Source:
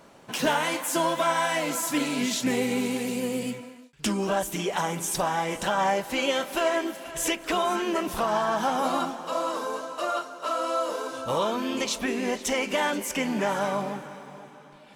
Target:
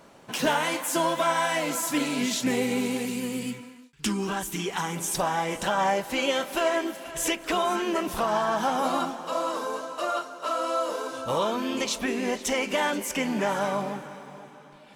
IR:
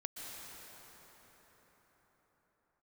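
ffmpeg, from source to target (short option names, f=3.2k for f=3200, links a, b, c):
-filter_complex "[0:a]asettb=1/sr,asplit=3[a][b][c];[a]atrim=end=3.054[d];[b]atrim=start=3.05:end=4.95,asetpts=PTS-STARTPTS,afade=t=in:d=0.004:c=qsin,afade=t=out:st=1.896:d=0.004:c=qsin,equalizer=f=600:t=o:w=0.48:g=-14.5[e];[c]atrim=start=4.946[f];[d][e]acrossfade=d=0.004:c1=hsin:c2=qsin[g];[g][f]acrossfade=d=0.004:c1=qsin:c2=hsin"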